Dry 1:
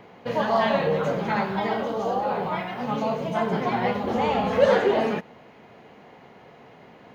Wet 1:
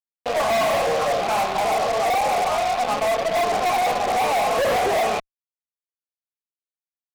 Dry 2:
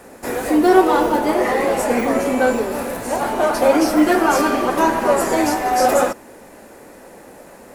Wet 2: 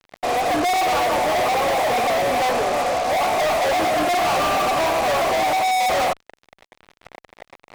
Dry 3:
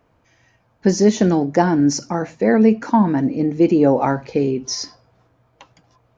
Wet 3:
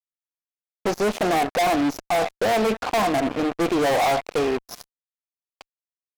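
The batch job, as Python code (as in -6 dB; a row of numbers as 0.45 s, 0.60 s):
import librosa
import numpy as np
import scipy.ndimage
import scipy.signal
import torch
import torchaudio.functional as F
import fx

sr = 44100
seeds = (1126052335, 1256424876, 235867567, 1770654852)

y = fx.vowel_filter(x, sr, vowel='a')
y = fx.fuzz(y, sr, gain_db=42.0, gate_db=-45.0)
y = F.gain(torch.from_numpy(y), -5.0).numpy()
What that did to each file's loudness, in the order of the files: +3.5 LU, -2.5 LU, -5.0 LU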